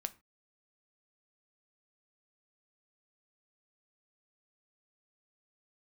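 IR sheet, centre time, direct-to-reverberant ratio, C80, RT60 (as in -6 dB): 3 ms, 10.0 dB, 26.0 dB, not exponential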